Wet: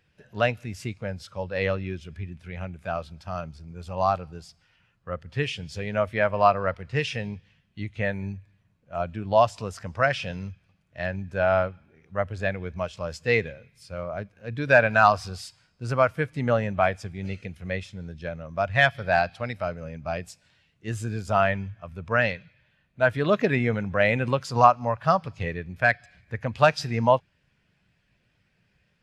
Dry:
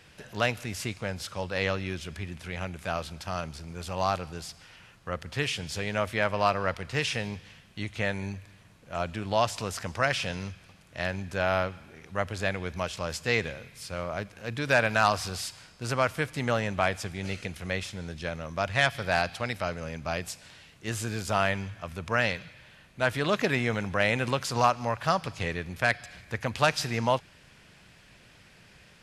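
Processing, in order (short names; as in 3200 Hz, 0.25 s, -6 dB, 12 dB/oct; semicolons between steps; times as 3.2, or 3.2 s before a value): spectral expander 1.5:1; gain +6.5 dB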